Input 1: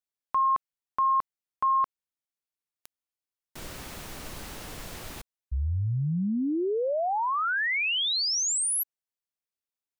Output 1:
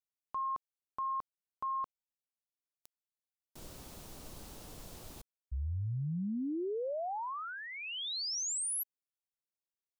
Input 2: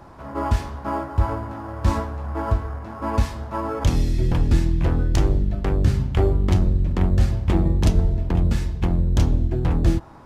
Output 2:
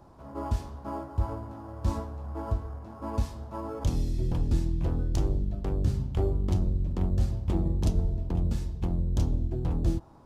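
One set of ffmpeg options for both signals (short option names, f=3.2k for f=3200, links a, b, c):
-af "equalizer=f=1.9k:t=o:w=1.4:g=-9.5,volume=-8dB"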